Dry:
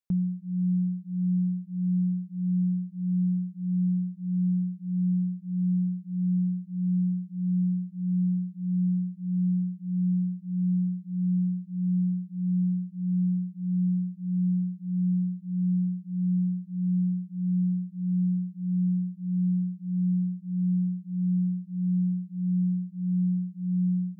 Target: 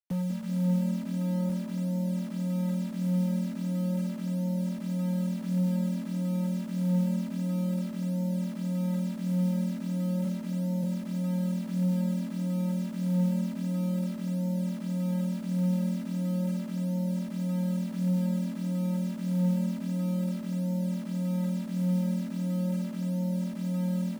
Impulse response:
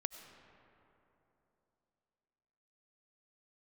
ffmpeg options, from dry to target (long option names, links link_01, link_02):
-filter_complex "[0:a]asplit=3[link_01][link_02][link_03];[link_01]afade=type=out:start_time=10.24:duration=0.02[link_04];[link_02]highpass=frequency=77:width=0.5412,highpass=frequency=77:width=1.3066,afade=type=in:start_time=10.24:duration=0.02,afade=type=out:start_time=10.82:duration=0.02[link_05];[link_03]afade=type=in:start_time=10.82:duration=0.02[link_06];[link_04][link_05][link_06]amix=inputs=3:normalize=0,asplit=3[link_07][link_08][link_09];[link_07]afade=type=out:start_time=15.09:duration=0.02[link_10];[link_08]equalizer=frequency=130:width_type=o:width=0.2:gain=7,afade=type=in:start_time=15.09:duration=0.02,afade=type=out:start_time=15.71:duration=0.02[link_11];[link_09]afade=type=in:start_time=15.71:duration=0.02[link_12];[link_10][link_11][link_12]amix=inputs=3:normalize=0,aecho=1:1:1:0.98,asettb=1/sr,asplit=3[link_13][link_14][link_15];[link_13]atrim=end=1.094[link_16];[link_14]atrim=start=1.09:end=1.49,asetpts=PTS-STARTPTS,afade=type=in:duration=0.004:curve=qsin,afade=type=out:start_time=0.396:duration=0.004:curve=qsin,asubboost=boost=8:cutoff=250[link_17];[link_15]atrim=start=1.486[link_18];[link_16][link_17]acrossfade=duration=0.004:curve1=hsin:curve2=qsin[link_19];[link_19][link_18]acrossfade=duration=0.004:curve1=qsin:curve2=hsin,acrossover=split=120|130|150[link_20][link_21][link_22][link_23];[link_20]crystalizer=i=6.5:c=0[link_24];[link_22]acontrast=45[link_25];[link_24][link_21][link_25][link_23]amix=inputs=4:normalize=0,asoftclip=type=tanh:threshold=-22dB,flanger=delay=4:depth=7:regen=85:speed=0.16:shape=triangular,acrusher=bits=7:mix=0:aa=0.000001,asplit=6[link_26][link_27][link_28][link_29][link_30][link_31];[link_27]adelay=192,afreqshift=40,volume=-9.5dB[link_32];[link_28]adelay=384,afreqshift=80,volume=-16.1dB[link_33];[link_29]adelay=576,afreqshift=120,volume=-22.6dB[link_34];[link_30]adelay=768,afreqshift=160,volume=-29.2dB[link_35];[link_31]adelay=960,afreqshift=200,volume=-35.7dB[link_36];[link_26][link_32][link_33][link_34][link_35][link_36]amix=inputs=6:normalize=0"